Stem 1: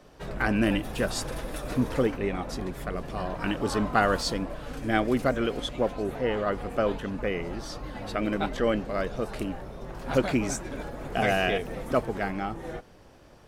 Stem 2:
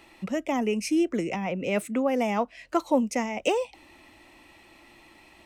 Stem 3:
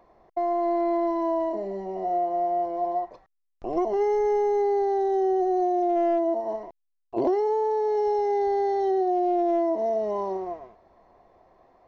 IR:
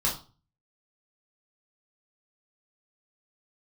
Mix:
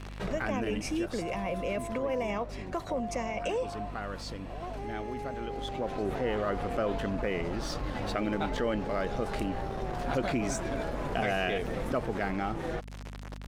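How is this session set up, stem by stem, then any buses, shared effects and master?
-2.0 dB, 0.00 s, no send, crossover distortion -47 dBFS; fast leveller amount 50%; auto duck -13 dB, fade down 1.35 s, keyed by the second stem
-1.0 dB, 0.00 s, no send, comb 1.8 ms, depth 46%; limiter -19.5 dBFS, peak gain reduction 9 dB
-8.0 dB, 0.85 s, no send, HPF 720 Hz 12 dB/oct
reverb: off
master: high shelf 9900 Hz -10 dB; hum 50 Hz, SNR 14 dB; compressor 1.5:1, threshold -35 dBFS, peak gain reduction 6 dB

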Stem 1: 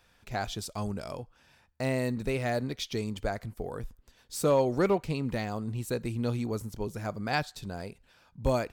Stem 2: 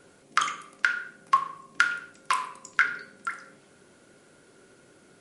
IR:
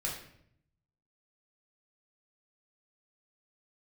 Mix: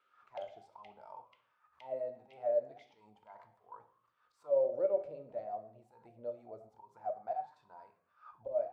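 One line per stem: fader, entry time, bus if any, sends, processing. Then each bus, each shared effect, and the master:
+2.5 dB, 0.00 s, send -5.5 dB, auto swell 0.147 s; backwards sustainer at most 110 dB/s
+2.5 dB, 0.00 s, no send, Chebyshev band-stop 670–2000 Hz, order 5; bell 3200 Hz +13.5 dB 1.2 oct; auto duck -10 dB, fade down 1.30 s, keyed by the first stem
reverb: on, RT60 0.70 s, pre-delay 3 ms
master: auto-wah 570–1300 Hz, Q 18, down, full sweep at -20 dBFS

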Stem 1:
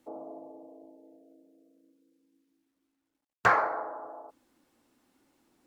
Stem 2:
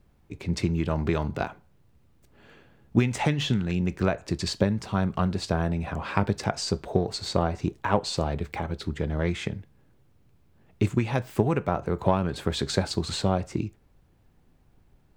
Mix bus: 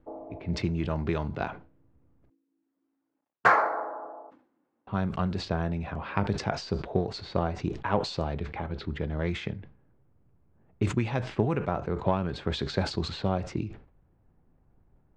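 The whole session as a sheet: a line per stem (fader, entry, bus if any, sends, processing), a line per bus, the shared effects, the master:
+2.5 dB, 0.00 s, no send, HPF 140 Hz; auto duck -9 dB, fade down 0.85 s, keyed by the second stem
-3.5 dB, 0.00 s, muted 2.3–4.87, no send, LPF 5100 Hz 12 dB/oct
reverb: off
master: low-pass opened by the level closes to 1300 Hz, open at -24 dBFS; sustainer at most 120 dB/s

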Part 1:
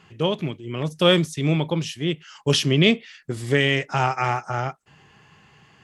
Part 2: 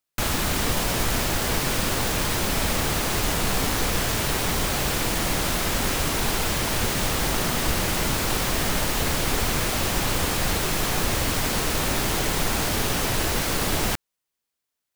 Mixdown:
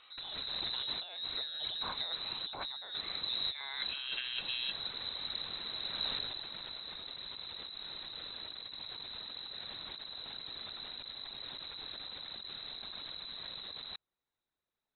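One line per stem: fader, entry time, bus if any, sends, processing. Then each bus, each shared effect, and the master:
-14.5 dB, 0.00 s, no send, dry
-5.5 dB, 0.00 s, no send, bell 990 Hz -13.5 dB 2.3 oct; whisperiser; auto duck -16 dB, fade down 1.20 s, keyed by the first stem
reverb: off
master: negative-ratio compressor -42 dBFS, ratio -1; inverted band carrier 4000 Hz

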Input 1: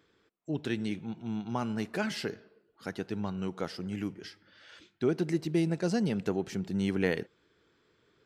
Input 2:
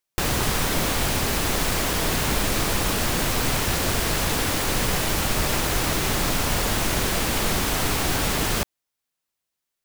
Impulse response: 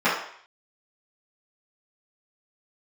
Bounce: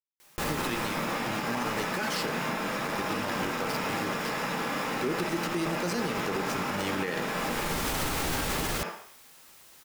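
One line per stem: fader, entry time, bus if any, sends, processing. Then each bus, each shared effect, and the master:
+3.0 dB, 0.00 s, send -23 dB, tilt +2 dB/oct; sample gate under -37 dBFS
-3.0 dB, 0.20 s, send -22 dB, fast leveller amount 50%; auto duck -21 dB, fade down 1.25 s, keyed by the first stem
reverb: on, RT60 0.60 s, pre-delay 3 ms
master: limiter -20.5 dBFS, peak gain reduction 10.5 dB

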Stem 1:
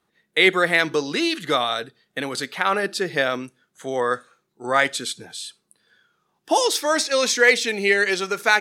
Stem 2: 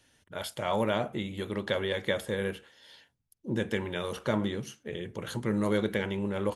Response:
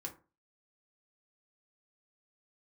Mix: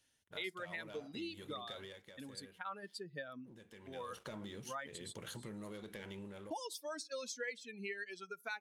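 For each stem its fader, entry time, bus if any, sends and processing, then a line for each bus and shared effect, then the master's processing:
-13.0 dB, 0.00 s, send -23 dB, per-bin expansion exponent 2; expander -42 dBFS
1.81 s -11.5 dB -> 2.05 s -22 dB -> 3.7 s -22 dB -> 4.24 s -9.5 dB -> 5.43 s -9.5 dB -> 5.82 s -16.5 dB, 0.00 s, no send, high shelf 2600 Hz +8.5 dB; sample leveller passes 2; compressor 3:1, threshold -29 dBFS, peak gain reduction 8.5 dB; auto duck -6 dB, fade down 0.30 s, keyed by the first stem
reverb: on, RT60 0.35 s, pre-delay 3 ms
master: compressor 3:1, threshold -43 dBFS, peak gain reduction 14 dB

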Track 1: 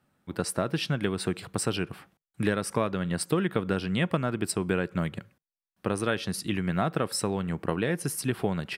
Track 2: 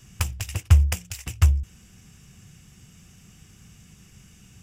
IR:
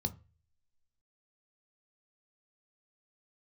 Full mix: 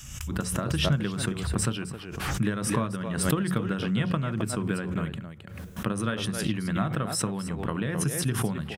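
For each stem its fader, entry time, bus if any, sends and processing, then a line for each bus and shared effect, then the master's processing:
-3.5 dB, 0.00 s, send -10.5 dB, echo send -11 dB, dry
-4.0 dB, 0.00 s, send -15 dB, no echo send, passive tone stack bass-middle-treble 10-0-10; compressor 10:1, threshold -35 dBFS, peak gain reduction 16.5 dB; auto duck -17 dB, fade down 1.20 s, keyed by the first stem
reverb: on, RT60 0.35 s, pre-delay 11 ms
echo: echo 0.266 s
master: transient shaper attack +4 dB, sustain 0 dB; backwards sustainer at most 47 dB/s

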